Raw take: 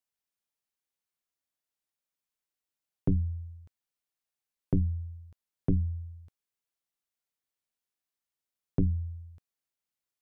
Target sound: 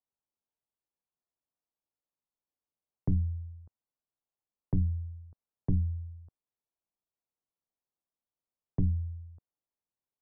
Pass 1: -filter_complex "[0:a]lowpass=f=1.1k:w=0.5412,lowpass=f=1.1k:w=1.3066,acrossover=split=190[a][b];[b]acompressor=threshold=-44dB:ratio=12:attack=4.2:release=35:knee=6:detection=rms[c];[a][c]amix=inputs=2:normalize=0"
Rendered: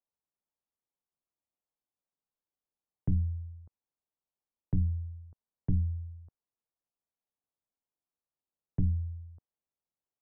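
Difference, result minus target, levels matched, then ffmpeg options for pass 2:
compressor: peak gain reduction +7 dB
-filter_complex "[0:a]lowpass=f=1.1k:w=0.5412,lowpass=f=1.1k:w=1.3066,acrossover=split=190[a][b];[b]acompressor=threshold=-36.5dB:ratio=12:attack=4.2:release=35:knee=6:detection=rms[c];[a][c]amix=inputs=2:normalize=0"

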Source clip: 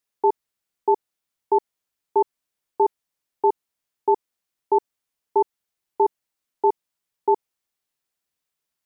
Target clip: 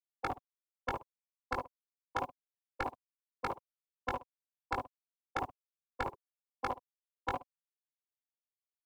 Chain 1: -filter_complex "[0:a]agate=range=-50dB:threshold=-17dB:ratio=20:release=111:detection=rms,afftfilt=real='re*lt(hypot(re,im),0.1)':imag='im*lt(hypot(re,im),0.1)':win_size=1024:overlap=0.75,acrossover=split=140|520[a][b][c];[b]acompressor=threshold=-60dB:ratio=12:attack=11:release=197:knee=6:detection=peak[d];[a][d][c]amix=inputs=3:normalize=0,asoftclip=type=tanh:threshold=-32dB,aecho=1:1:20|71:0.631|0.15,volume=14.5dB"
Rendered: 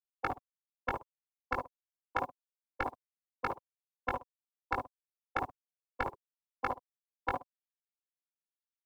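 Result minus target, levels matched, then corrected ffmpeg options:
soft clip: distortion -8 dB
-filter_complex "[0:a]agate=range=-50dB:threshold=-17dB:ratio=20:release=111:detection=rms,afftfilt=real='re*lt(hypot(re,im),0.1)':imag='im*lt(hypot(re,im),0.1)':win_size=1024:overlap=0.75,acrossover=split=140|520[a][b][c];[b]acompressor=threshold=-60dB:ratio=12:attack=11:release=197:knee=6:detection=peak[d];[a][d][c]amix=inputs=3:normalize=0,asoftclip=type=tanh:threshold=-39dB,aecho=1:1:20|71:0.631|0.15,volume=14.5dB"

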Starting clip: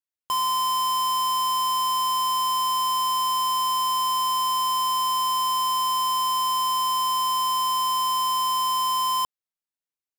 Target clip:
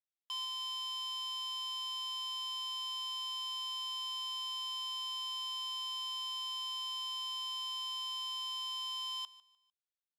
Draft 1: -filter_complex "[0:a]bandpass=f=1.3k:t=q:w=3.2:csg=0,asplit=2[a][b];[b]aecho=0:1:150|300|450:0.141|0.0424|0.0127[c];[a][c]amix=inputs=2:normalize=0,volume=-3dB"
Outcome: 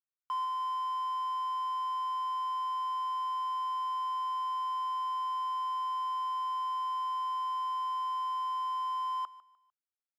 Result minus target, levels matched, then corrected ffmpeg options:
4000 Hz band -17.0 dB
-filter_complex "[0:a]bandpass=f=3.6k:t=q:w=3.2:csg=0,asplit=2[a][b];[b]aecho=0:1:150|300|450:0.141|0.0424|0.0127[c];[a][c]amix=inputs=2:normalize=0,volume=-3dB"

